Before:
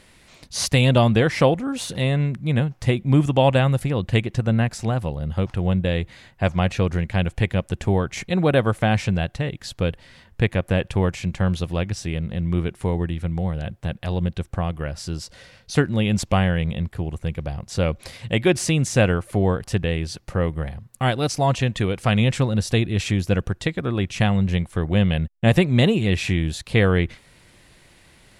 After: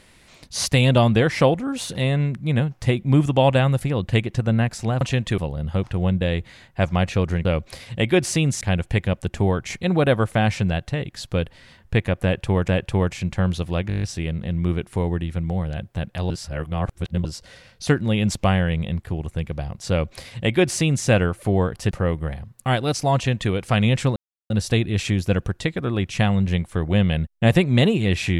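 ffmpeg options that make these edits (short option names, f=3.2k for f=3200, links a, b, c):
-filter_complex "[0:a]asplit=17[a][b][c][d][e][f][g][h][i][j][k][l][m][n][o][p][q];[a]atrim=end=5.012[r];[b]atrim=start=21.498:end=21.872[s];[c]atrim=start=5.008:end=7.082[t];[d]atrim=start=17.778:end=18.942[u];[e]atrim=start=7.078:end=11.152[v];[f]atrim=start=10.698:end=11.922[w];[g]atrim=start=11.898:end=11.922[x];[h]atrim=start=11.898:end=11.922[y];[i]atrim=start=11.898:end=11.922[z];[j]atrim=start=11.898:end=11.922[aa];[k]atrim=start=11.898:end=11.922[ab];[l]atrim=start=11.898:end=11.922[ac];[m]atrim=start=11.898:end=14.182[ad];[n]atrim=start=14.178:end=15.132,asetpts=PTS-STARTPTS,areverse[ae];[o]atrim=start=15.128:end=19.792[af];[p]atrim=start=20.258:end=22.51,asetpts=PTS-STARTPTS,afade=t=out:st=2.248:d=0.004:c=hsin,apad=pad_dur=0.34[ag];[q]atrim=start=22.51,asetpts=PTS-STARTPTS,afade=t=in:d=0.004:c=hsin[ah];[r][s]acrossfade=d=0.004:c1=hsin:c2=hsin[ai];[ai][t]acrossfade=d=0.004:c1=hsin:c2=hsin[aj];[aj][u]acrossfade=d=0.004:c1=hsin:c2=hsin[ak];[ak][v]acrossfade=d=0.004:c1=hsin:c2=hsin[al];[al][w]acrossfade=d=0.004:c1=hsin:c2=hsin[am];[am][x]acrossfade=d=0.004:c1=hsin:c2=hsin[an];[an][y]acrossfade=d=0.004:c1=hsin:c2=hsin[ao];[ao][z]acrossfade=d=0.004:c1=hsin:c2=hsin[ap];[ap][aa]acrossfade=d=0.004:c1=hsin:c2=hsin[aq];[aq][ab]acrossfade=d=0.004:c1=hsin:c2=hsin[ar];[ar][ac]acrossfade=d=0.004:c1=hsin:c2=hsin[as];[as][ad]acrossfade=d=0.004:c1=hsin:c2=hsin[at];[at][ae]acrossfade=d=0.004:c1=hsin:c2=hsin[au];[au][af]acrossfade=d=0.004:c1=hsin:c2=hsin[av];[ag][ah]concat=n=2:v=0:a=1[aw];[av][aw]acrossfade=d=0.004:c1=hsin:c2=hsin"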